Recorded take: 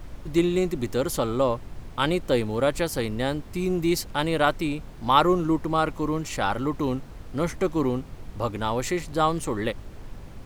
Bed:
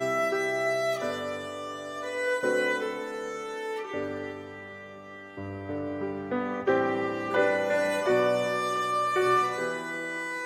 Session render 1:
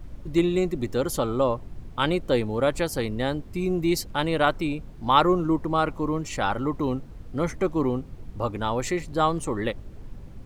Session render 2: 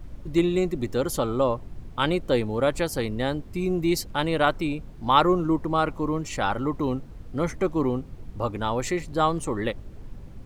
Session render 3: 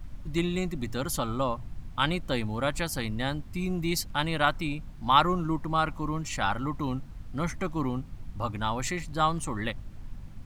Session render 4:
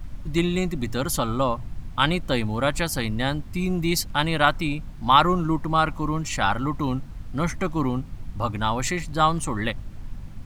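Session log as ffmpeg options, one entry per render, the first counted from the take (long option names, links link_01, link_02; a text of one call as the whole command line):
ffmpeg -i in.wav -af "afftdn=noise_reduction=8:noise_floor=-42" out.wav
ffmpeg -i in.wav -af anull out.wav
ffmpeg -i in.wav -af "equalizer=frequency=430:width_type=o:width=0.98:gain=-13,bandreject=frequency=60:width_type=h:width=6,bandreject=frequency=120:width_type=h:width=6" out.wav
ffmpeg -i in.wav -af "volume=5.5dB,alimiter=limit=-3dB:level=0:latency=1" out.wav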